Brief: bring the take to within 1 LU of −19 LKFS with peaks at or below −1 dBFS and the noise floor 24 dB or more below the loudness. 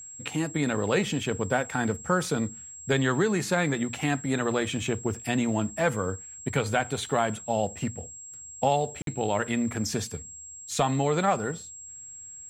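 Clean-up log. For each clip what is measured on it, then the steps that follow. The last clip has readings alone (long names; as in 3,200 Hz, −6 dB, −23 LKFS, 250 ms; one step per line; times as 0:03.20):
number of dropouts 1; longest dropout 52 ms; interfering tone 7,600 Hz; level of the tone −41 dBFS; integrated loudness −28.0 LKFS; sample peak −10.5 dBFS; target loudness −19.0 LKFS
→ repair the gap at 0:09.02, 52 ms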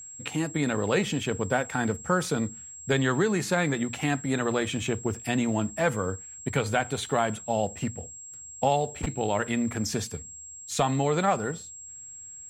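number of dropouts 0; interfering tone 7,600 Hz; level of the tone −41 dBFS
→ notch filter 7,600 Hz, Q 30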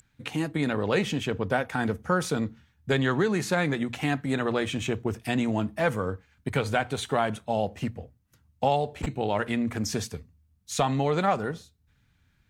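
interfering tone none found; integrated loudness −28.0 LKFS; sample peak −10.5 dBFS; target loudness −19.0 LKFS
→ level +9 dB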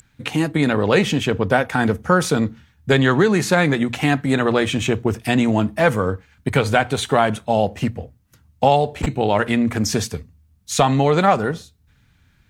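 integrated loudness −19.0 LKFS; sample peak −1.5 dBFS; background noise floor −58 dBFS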